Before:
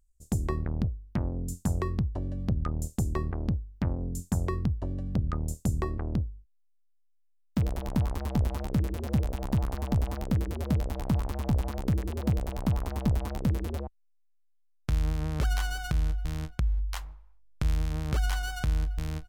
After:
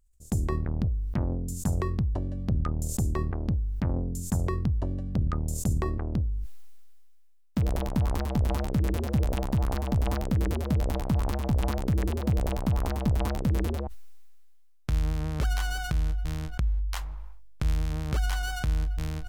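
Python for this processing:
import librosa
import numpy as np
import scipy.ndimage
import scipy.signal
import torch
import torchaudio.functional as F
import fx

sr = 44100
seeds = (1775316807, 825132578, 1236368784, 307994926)

y = fx.sustainer(x, sr, db_per_s=26.0)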